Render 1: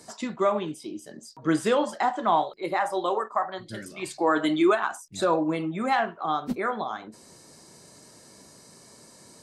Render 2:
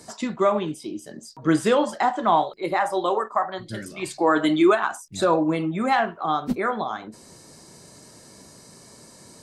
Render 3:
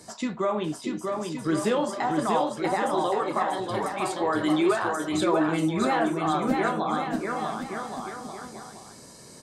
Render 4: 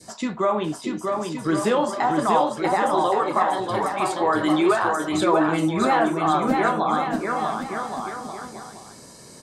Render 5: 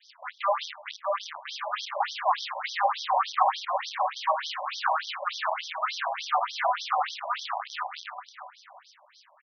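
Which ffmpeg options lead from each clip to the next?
-af "lowshelf=f=140:g=5.5,volume=3dB"
-filter_complex "[0:a]alimiter=limit=-15.5dB:level=0:latency=1:release=28,flanger=delay=9.9:depth=5.8:regen=-62:speed=0.38:shape=triangular,asplit=2[a][b];[b]aecho=0:1:640|1120|1480|1750|1952:0.631|0.398|0.251|0.158|0.1[c];[a][c]amix=inputs=2:normalize=0,volume=2.5dB"
-af "adynamicequalizer=threshold=0.0112:dfrequency=1000:dqfactor=0.99:tfrequency=1000:tqfactor=0.99:attack=5:release=100:ratio=0.375:range=2:mode=boostabove:tftype=bell,volume=2.5dB"
-filter_complex "[0:a]asplit=2[a][b];[b]adelay=103,lowpass=f=2.8k:p=1,volume=-12.5dB,asplit=2[c][d];[d]adelay=103,lowpass=f=2.8k:p=1,volume=0.54,asplit=2[e][f];[f]adelay=103,lowpass=f=2.8k:p=1,volume=0.54,asplit=2[g][h];[h]adelay=103,lowpass=f=2.8k:p=1,volume=0.54,asplit=2[i][j];[j]adelay=103,lowpass=f=2.8k:p=1,volume=0.54,asplit=2[k][l];[l]adelay=103,lowpass=f=2.8k:p=1,volume=0.54[m];[a][c][e][g][i][k][m]amix=inputs=7:normalize=0,acrusher=bits=5:dc=4:mix=0:aa=0.000001,afftfilt=real='re*between(b*sr/1024,750*pow(4500/750,0.5+0.5*sin(2*PI*3.4*pts/sr))/1.41,750*pow(4500/750,0.5+0.5*sin(2*PI*3.4*pts/sr))*1.41)':imag='im*between(b*sr/1024,750*pow(4500/750,0.5+0.5*sin(2*PI*3.4*pts/sr))/1.41,750*pow(4500/750,0.5+0.5*sin(2*PI*3.4*pts/sr))*1.41)':win_size=1024:overlap=0.75"

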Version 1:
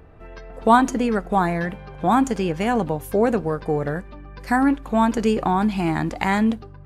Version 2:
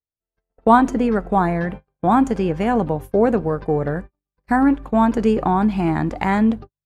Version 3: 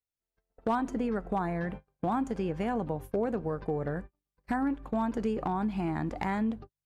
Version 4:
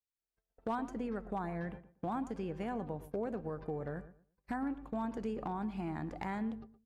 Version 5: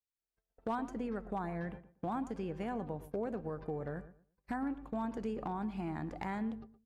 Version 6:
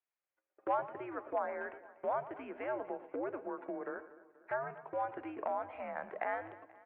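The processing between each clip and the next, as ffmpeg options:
-af "agate=range=-56dB:threshold=-32dB:ratio=16:detection=peak,highshelf=f=2.4k:g=-11,volume=3dB"
-af "acompressor=threshold=-30dB:ratio=2.5,volume=19dB,asoftclip=hard,volume=-19dB,volume=-2.5dB"
-filter_complex "[0:a]asplit=2[a][b];[b]adelay=117,lowpass=f=1.8k:p=1,volume=-14dB,asplit=2[c][d];[d]adelay=117,lowpass=f=1.8k:p=1,volume=0.23,asplit=2[e][f];[f]adelay=117,lowpass=f=1.8k:p=1,volume=0.23[g];[a][c][e][g]amix=inputs=4:normalize=0,volume=-7.5dB"
-af anull
-af "aecho=1:1:241|482|723|964|1205:0.112|0.0628|0.0352|0.0197|0.011,highpass=f=560:t=q:w=0.5412,highpass=f=560:t=q:w=1.307,lowpass=f=2.6k:t=q:w=0.5176,lowpass=f=2.6k:t=q:w=0.7071,lowpass=f=2.6k:t=q:w=1.932,afreqshift=-120,volume=5.5dB"

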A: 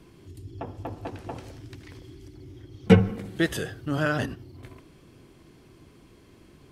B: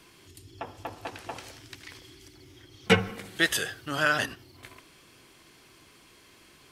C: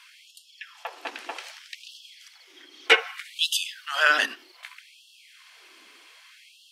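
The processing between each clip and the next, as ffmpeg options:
-af "tiltshelf=f=640:g=-9.5,volume=-1.5dB"
-af "equalizer=f=2.5k:w=0.46:g=10,afftfilt=real='re*gte(b*sr/1024,210*pow(2700/210,0.5+0.5*sin(2*PI*0.64*pts/sr)))':imag='im*gte(b*sr/1024,210*pow(2700/210,0.5+0.5*sin(2*PI*0.64*pts/sr)))':win_size=1024:overlap=0.75,volume=-2.5dB"

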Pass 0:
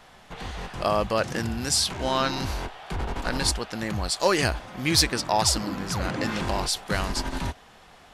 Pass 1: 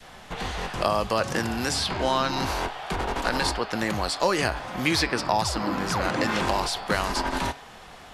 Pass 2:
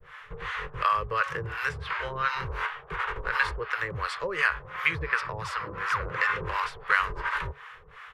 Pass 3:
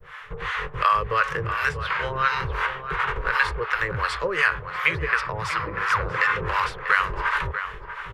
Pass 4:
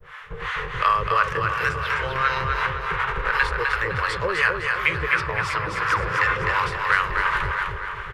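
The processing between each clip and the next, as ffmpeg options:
-filter_complex "[0:a]bandreject=f=138.5:t=h:w=4,bandreject=f=277:t=h:w=4,bandreject=f=415.5:t=h:w=4,bandreject=f=554:t=h:w=4,bandreject=f=692.5:t=h:w=4,bandreject=f=831:t=h:w=4,bandreject=f=969.5:t=h:w=4,bandreject=f=1.108k:t=h:w=4,bandreject=f=1.2465k:t=h:w=4,bandreject=f=1.385k:t=h:w=4,bandreject=f=1.5235k:t=h:w=4,bandreject=f=1.662k:t=h:w=4,bandreject=f=1.8005k:t=h:w=4,bandreject=f=1.939k:t=h:w=4,bandreject=f=2.0775k:t=h:w=4,bandreject=f=2.216k:t=h:w=4,bandreject=f=2.3545k:t=h:w=4,bandreject=f=2.493k:t=h:w=4,bandreject=f=2.6315k:t=h:w=4,bandreject=f=2.77k:t=h:w=4,bandreject=f=2.9085k:t=h:w=4,bandreject=f=3.047k:t=h:w=4,bandreject=f=3.1855k:t=h:w=4,bandreject=f=3.324k:t=h:w=4,bandreject=f=3.4625k:t=h:w=4,bandreject=f=3.601k:t=h:w=4,bandreject=f=3.7395k:t=h:w=4,bandreject=f=3.878k:t=h:w=4,bandreject=f=4.0165k:t=h:w=4,bandreject=f=4.155k:t=h:w=4,bandreject=f=4.2935k:t=h:w=4,bandreject=f=4.432k:t=h:w=4,bandreject=f=4.5705k:t=h:w=4,bandreject=f=4.709k:t=h:w=4,bandreject=f=4.8475k:t=h:w=4,bandreject=f=4.986k:t=h:w=4,bandreject=f=5.1245k:t=h:w=4,bandreject=f=5.263k:t=h:w=4,adynamicequalizer=threshold=0.0224:dfrequency=960:dqfactor=1.3:tfrequency=960:tqfactor=1.3:attack=5:release=100:ratio=0.375:range=2:mode=boostabove:tftype=bell,acrossover=split=270|3300[a][b][c];[a]acompressor=threshold=-39dB:ratio=4[d];[b]acompressor=threshold=-28dB:ratio=4[e];[c]acompressor=threshold=-40dB:ratio=4[f];[d][e][f]amix=inputs=3:normalize=0,volume=6dB"
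-filter_complex "[0:a]firequalizer=gain_entry='entry(150,0);entry(230,-29);entry(440,3);entry(700,-15);entry(1100,7);entry(1900,7);entry(4500,-12);entry(7800,-14)':delay=0.05:min_phase=1,acrossover=split=640[a][b];[a]aeval=exprs='val(0)*(1-1/2+1/2*cos(2*PI*2.8*n/s))':c=same[c];[b]aeval=exprs='val(0)*(1-1/2-1/2*cos(2*PI*2.8*n/s))':c=same[d];[c][d]amix=inputs=2:normalize=0"
-filter_complex "[0:a]asplit=2[a][b];[b]adelay=641.4,volume=-10dB,highshelf=f=4k:g=-14.4[c];[a][c]amix=inputs=2:normalize=0,asplit=2[d][e];[e]alimiter=limit=-14.5dB:level=0:latency=1:release=255,volume=-1dB[f];[d][f]amix=inputs=2:normalize=0"
-af "aecho=1:1:255|510|765|1020|1275:0.596|0.22|0.0815|0.0302|0.0112"

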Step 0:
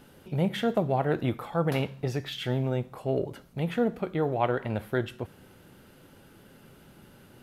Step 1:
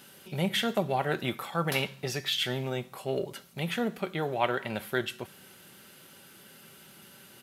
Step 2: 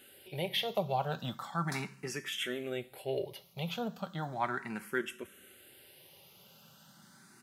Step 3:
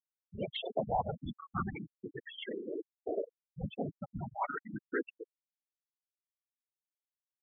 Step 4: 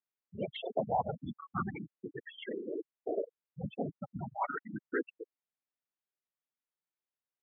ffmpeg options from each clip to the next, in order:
-af "highpass=98,tiltshelf=f=1.5k:g=-7.5,aecho=1:1:5.2:0.33,volume=2.5dB"
-filter_complex "[0:a]asplit=2[a][b];[b]afreqshift=0.36[c];[a][c]amix=inputs=2:normalize=1,volume=-2.5dB"
-af "afftfilt=real='hypot(re,im)*cos(2*PI*random(0))':imag='hypot(re,im)*sin(2*PI*random(1))':win_size=512:overlap=0.75,afftfilt=real='re*gte(hypot(re,im),0.0282)':imag='im*gte(hypot(re,im),0.0282)':win_size=1024:overlap=0.75,aemphasis=mode=reproduction:type=75fm,volume=5dB"
-af "highpass=110,lowpass=2.6k,volume=1dB"

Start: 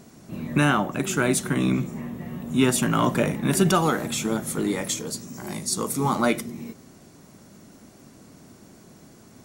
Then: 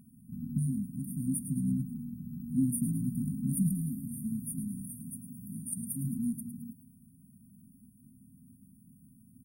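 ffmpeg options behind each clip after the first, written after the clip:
-filter_complex "[0:a]asplit=7[a][b][c][d][e][f][g];[b]adelay=108,afreqshift=110,volume=-10.5dB[h];[c]adelay=216,afreqshift=220,volume=-16.3dB[i];[d]adelay=324,afreqshift=330,volume=-22.2dB[j];[e]adelay=432,afreqshift=440,volume=-28dB[k];[f]adelay=540,afreqshift=550,volume=-33.9dB[l];[g]adelay=648,afreqshift=660,volume=-39.7dB[m];[a][h][i][j][k][l][m]amix=inputs=7:normalize=0,afftfilt=real='re*(1-between(b*sr/4096,270,8800))':imag='im*(1-between(b*sr/4096,270,8800))':win_size=4096:overlap=0.75,volume=-6.5dB"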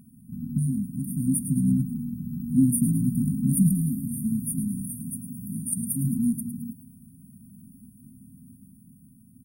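-af "dynaudnorm=f=160:g=13:m=3.5dB,volume=5dB"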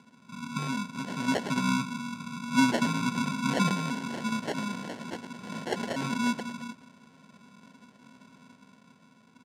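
-af "acrusher=samples=36:mix=1:aa=0.000001,highpass=270,lowpass=7.4k"

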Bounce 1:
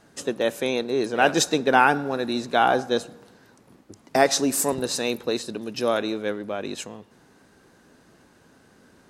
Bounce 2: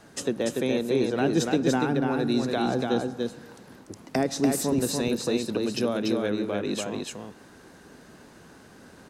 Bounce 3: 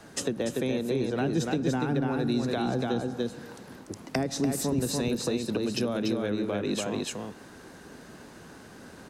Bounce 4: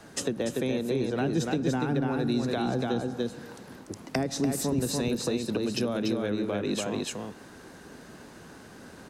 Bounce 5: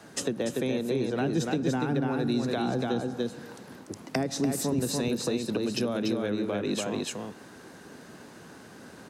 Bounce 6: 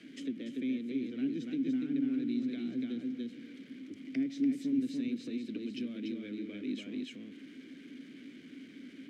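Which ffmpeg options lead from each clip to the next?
-filter_complex "[0:a]acrossover=split=320[a][b];[b]acompressor=threshold=-34dB:ratio=6[c];[a][c]amix=inputs=2:normalize=0,aecho=1:1:290:0.668,volume=4dB"
-filter_complex "[0:a]acrossover=split=170[a][b];[b]acompressor=threshold=-29dB:ratio=6[c];[a][c]amix=inputs=2:normalize=0,volume=2.5dB"
-af anull
-af "highpass=92"
-filter_complex "[0:a]aeval=exprs='val(0)+0.5*0.0141*sgn(val(0))':c=same,asplit=3[a][b][c];[a]bandpass=f=270:t=q:w=8,volume=0dB[d];[b]bandpass=f=2.29k:t=q:w=8,volume=-6dB[e];[c]bandpass=f=3.01k:t=q:w=8,volume=-9dB[f];[d][e][f]amix=inputs=3:normalize=0"

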